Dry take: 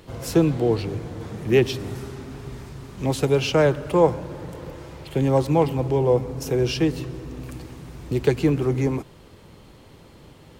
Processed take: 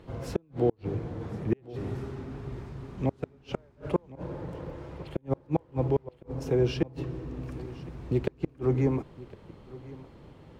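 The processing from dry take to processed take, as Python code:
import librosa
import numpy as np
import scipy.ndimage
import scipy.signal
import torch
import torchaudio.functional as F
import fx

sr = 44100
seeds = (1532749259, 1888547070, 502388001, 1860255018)

p1 = fx.lowpass(x, sr, hz=1500.0, slope=6)
p2 = fx.gate_flip(p1, sr, shuts_db=-11.0, range_db=-40)
p3 = p2 + fx.echo_single(p2, sr, ms=1060, db=-19.5, dry=0)
y = p3 * 10.0 ** (-2.5 / 20.0)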